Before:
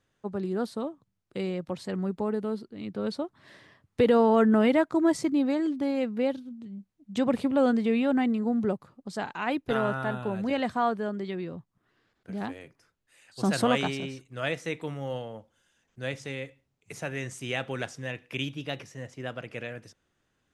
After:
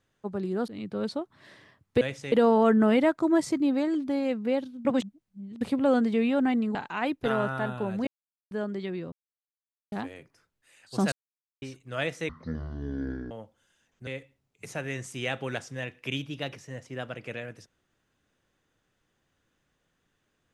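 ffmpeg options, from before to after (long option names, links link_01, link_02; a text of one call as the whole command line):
ffmpeg -i in.wav -filter_complex "[0:a]asplit=16[link_01][link_02][link_03][link_04][link_05][link_06][link_07][link_08][link_09][link_10][link_11][link_12][link_13][link_14][link_15][link_16];[link_01]atrim=end=0.682[link_17];[link_02]atrim=start=2.708:end=4.042[link_18];[link_03]atrim=start=16.028:end=16.342[link_19];[link_04]atrim=start=4.038:end=6.572[link_20];[link_05]atrim=start=6.568:end=7.332,asetpts=PTS-STARTPTS,areverse[link_21];[link_06]atrim=start=7.328:end=8.472[link_22];[link_07]atrim=start=9.198:end=10.52,asetpts=PTS-STARTPTS,afade=type=out:start_time=1.318:duration=0.004:curve=hsin[link_23];[link_08]atrim=start=10.52:end=10.96,asetpts=PTS-STARTPTS,volume=0[link_24];[link_09]atrim=start=10.96:end=11.57,asetpts=PTS-STARTPTS,afade=type=in:duration=0.004:curve=hsin,afade=type=out:start_time=0.606:duration=0.004:curve=hsin[link_25];[link_10]atrim=start=11.57:end=12.37,asetpts=PTS-STARTPTS,volume=0[link_26];[link_11]atrim=start=12.37:end=13.57,asetpts=PTS-STARTPTS,afade=type=in:duration=0.004:curve=hsin,afade=type=out:start_time=1.196:duration=0.004:curve=hsin[link_27];[link_12]atrim=start=13.57:end=14.07,asetpts=PTS-STARTPTS,volume=0[link_28];[link_13]atrim=start=14.07:end=14.744,asetpts=PTS-STARTPTS,afade=type=in:duration=0.004:curve=hsin[link_29];[link_14]atrim=start=14.74:end=15.27,asetpts=PTS-STARTPTS,asetrate=22932,aresample=44100,atrim=end_sample=44948,asetpts=PTS-STARTPTS[link_30];[link_15]atrim=start=15.266:end=16.032[link_31];[link_16]atrim=start=16.338[link_32];[link_17][link_18]acrossfade=duration=0.004:curve1=hsin:curve2=hsin[link_33];[link_33][link_19]acrossfade=duration=0.004:curve1=hsin:curve2=hsin[link_34];[link_34][link_20]acrossfade=duration=0.004:curve1=hsin:curve2=hsin[link_35];[link_35][link_21]acrossfade=duration=0.004:curve1=hsin:curve2=hsin[link_36];[link_36][link_22]acrossfade=duration=0.004:curve1=hsin:curve2=hsin[link_37];[link_23][link_24][link_25][link_26][link_27][link_28][link_29]concat=n=7:v=0:a=1[link_38];[link_37][link_38]acrossfade=duration=0.004:curve1=hsin:curve2=hsin[link_39];[link_39][link_30]acrossfade=duration=0.004:curve1=hsin:curve2=hsin[link_40];[link_40][link_31]acrossfade=duration=0.004:curve1=hsin:curve2=hsin[link_41];[link_41][link_32]acrossfade=duration=0.004:curve1=hsin:curve2=hsin" out.wav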